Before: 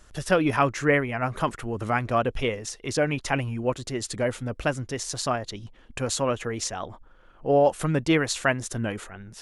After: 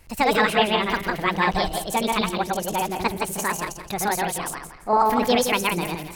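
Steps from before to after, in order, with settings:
feedback delay that plays each chunk backwards 130 ms, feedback 52%, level −1 dB
change of speed 1.53×

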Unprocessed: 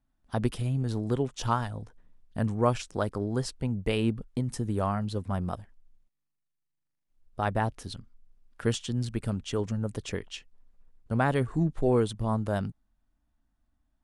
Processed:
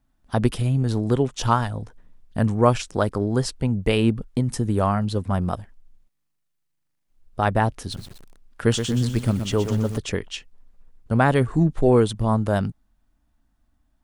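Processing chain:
0:07.79–0:09.98: feedback echo at a low word length 123 ms, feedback 55%, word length 8 bits, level −8 dB
level +7.5 dB

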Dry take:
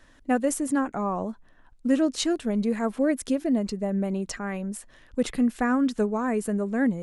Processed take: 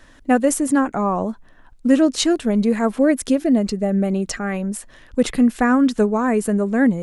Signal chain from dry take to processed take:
0:03.35–0:04.54: notch filter 990 Hz, Q 9.2
level +7.5 dB

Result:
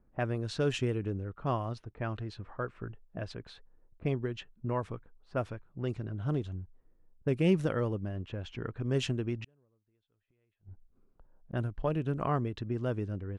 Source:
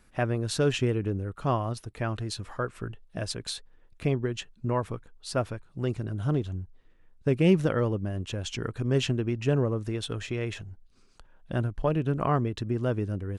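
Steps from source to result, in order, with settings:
low-pass that shuts in the quiet parts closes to 670 Hz, open at −22 dBFS
0:09.44–0:11.53: gate with flip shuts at −31 dBFS, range −40 dB
level −5 dB

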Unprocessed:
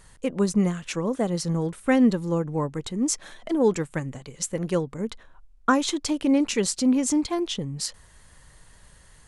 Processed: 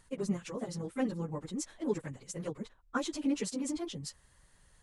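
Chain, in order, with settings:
time stretch by phase vocoder 0.52×
level −8 dB

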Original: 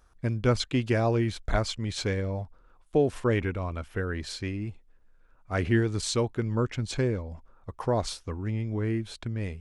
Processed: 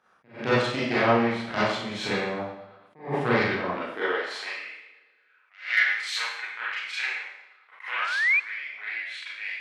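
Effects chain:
three-way crossover with the lows and the highs turned down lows −13 dB, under 280 Hz, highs −21 dB, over 2,900 Hz
in parallel at −1 dB: downward compressor, threshold −40 dBFS, peak gain reduction 19 dB
on the sum: harmonic generator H 3 −20 dB, 4 −12 dB, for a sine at −12 dBFS
drawn EQ curve 330 Hz 0 dB, 5,100 Hz +11 dB, 10,000 Hz +9 dB
four-comb reverb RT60 0.71 s, combs from 30 ms, DRR −8.5 dB
sound drawn into the spectrogram rise, 0:07.96–0:08.40, 1,100–2,500 Hz −20 dBFS
high-pass filter sweep 150 Hz → 2,100 Hz, 0:03.64–0:04.88
floating-point word with a short mantissa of 8 bits
on a send: bucket-brigade delay 116 ms, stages 4,096, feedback 63%, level −22.5 dB
on the sum: level that may rise only so fast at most 160 dB per second
level −8 dB

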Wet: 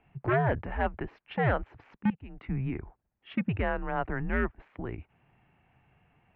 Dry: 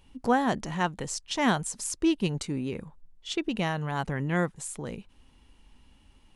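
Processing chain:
0:01.95–0:02.43: output level in coarse steps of 21 dB
wave folding −20 dBFS
single-sideband voice off tune −120 Hz 160–2,500 Hz
level +1 dB

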